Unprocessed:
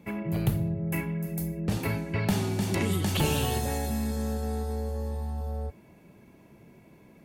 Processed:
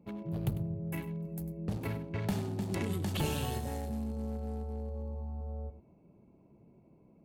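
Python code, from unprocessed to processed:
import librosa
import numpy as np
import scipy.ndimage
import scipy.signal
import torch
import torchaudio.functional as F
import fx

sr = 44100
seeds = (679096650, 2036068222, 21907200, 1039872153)

p1 = fx.wiener(x, sr, points=25)
p2 = p1 + fx.echo_single(p1, sr, ms=99, db=-13.5, dry=0)
y = F.gain(torch.from_numpy(p2), -6.5).numpy()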